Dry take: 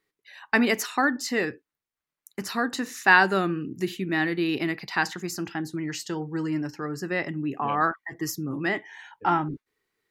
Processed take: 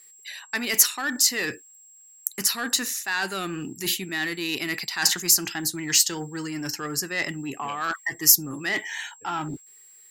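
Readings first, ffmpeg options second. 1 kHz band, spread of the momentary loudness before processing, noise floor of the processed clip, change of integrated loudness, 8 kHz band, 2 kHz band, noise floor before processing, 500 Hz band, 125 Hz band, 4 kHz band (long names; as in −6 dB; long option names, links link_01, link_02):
−6.5 dB, 10 LU, −52 dBFS, +2.5 dB, +17.0 dB, −3.0 dB, below −85 dBFS, −6.0 dB, −4.0 dB, +10.0 dB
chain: -af "areverse,acompressor=threshold=-32dB:ratio=12,areverse,aeval=exprs='0.1*(cos(1*acos(clip(val(0)/0.1,-1,1)))-cos(1*PI/2))+0.00794*(cos(5*acos(clip(val(0)/0.1,-1,1)))-cos(5*PI/2))':channel_layout=same,crystalizer=i=9:c=0,aeval=exprs='val(0)+0.00355*sin(2*PI*7600*n/s)':channel_layout=same"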